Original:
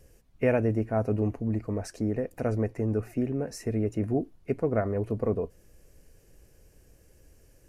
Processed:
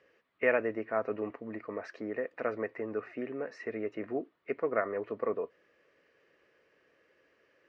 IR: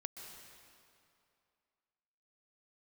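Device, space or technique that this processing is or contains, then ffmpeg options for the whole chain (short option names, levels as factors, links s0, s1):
phone earpiece: -af "highpass=470,equalizer=f=770:t=q:w=4:g=-6,equalizer=f=1200:t=q:w=4:g=7,equalizer=f=1900:t=q:w=4:g=7,lowpass=f=3600:w=0.5412,lowpass=f=3600:w=1.3066"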